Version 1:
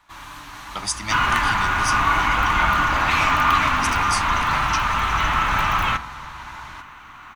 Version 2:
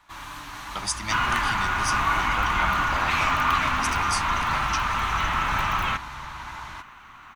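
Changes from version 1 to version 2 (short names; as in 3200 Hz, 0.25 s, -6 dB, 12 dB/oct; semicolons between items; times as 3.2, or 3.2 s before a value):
speech: send off; second sound: send off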